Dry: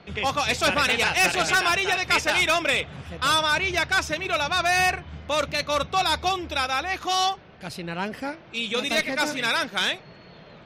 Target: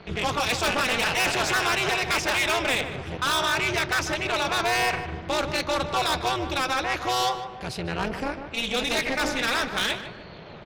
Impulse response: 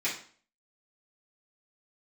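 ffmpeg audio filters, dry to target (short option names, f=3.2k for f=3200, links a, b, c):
-filter_complex "[0:a]highshelf=f=11k:g=-8,asoftclip=type=tanh:threshold=-24.5dB,tremolo=f=250:d=0.947,asplit=2[a][b];[b]adelay=151,lowpass=f=2k:p=1,volume=-9dB,asplit=2[c][d];[d]adelay=151,lowpass=f=2k:p=1,volume=0.46,asplit=2[e][f];[f]adelay=151,lowpass=f=2k:p=1,volume=0.46,asplit=2[g][h];[h]adelay=151,lowpass=f=2k:p=1,volume=0.46,asplit=2[i][j];[j]adelay=151,lowpass=f=2k:p=1,volume=0.46[k];[a][c][e][g][i][k]amix=inputs=6:normalize=0,volume=7.5dB"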